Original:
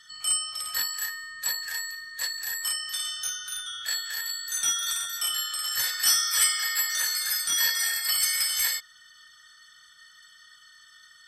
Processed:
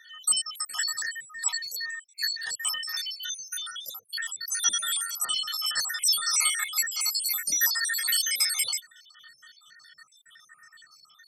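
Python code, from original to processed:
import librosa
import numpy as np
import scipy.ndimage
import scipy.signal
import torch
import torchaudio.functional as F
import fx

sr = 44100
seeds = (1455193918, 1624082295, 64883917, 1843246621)

y = fx.spec_dropout(x, sr, seeds[0], share_pct=68)
y = scipy.signal.sosfilt(scipy.signal.butter(4, 110.0, 'highpass', fs=sr, output='sos'), y)
y = F.gain(torch.from_numpy(y), 4.0).numpy()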